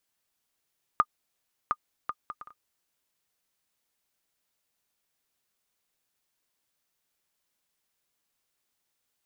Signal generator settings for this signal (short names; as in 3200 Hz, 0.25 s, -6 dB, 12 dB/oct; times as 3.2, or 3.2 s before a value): bouncing ball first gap 0.71 s, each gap 0.54, 1220 Hz, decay 52 ms -9.5 dBFS